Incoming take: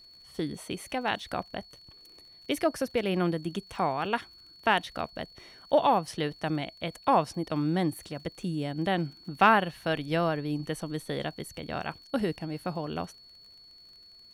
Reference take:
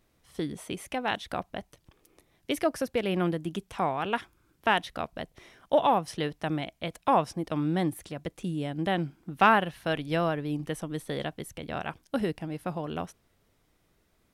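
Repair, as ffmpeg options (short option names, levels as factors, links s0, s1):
-af "adeclick=t=4,bandreject=f=4400:w=30"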